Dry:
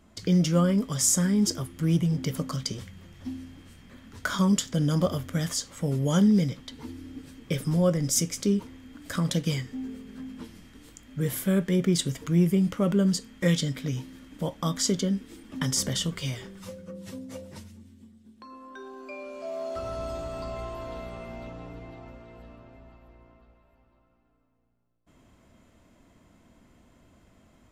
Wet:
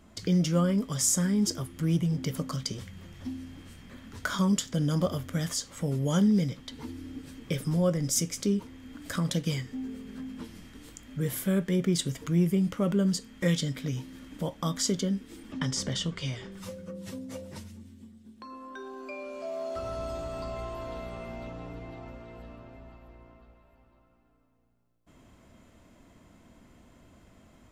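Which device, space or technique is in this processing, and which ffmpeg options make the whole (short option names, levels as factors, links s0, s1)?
parallel compression: -filter_complex "[0:a]asplit=2[s0][s1];[s1]acompressor=threshold=0.00891:ratio=6,volume=0.891[s2];[s0][s2]amix=inputs=2:normalize=0,asettb=1/sr,asplit=3[s3][s4][s5];[s3]atrim=end=15.524[s6];[s4]atrim=start=15.52:end=16.52,asetpts=PTS-STARTPTS,afade=t=in:d=0.004:c=qsin,afade=t=out:st=0.996:d=0.004:c=qsin,lowpass=6100[s7];[s5]atrim=start=16.516[s8];[s6][s7]acrossfade=d=0.004:c1=hsin:c2=qsin[s9];[s9][s8]acrossfade=d=0.004:c1=qsin:c2=hsin,volume=0.668"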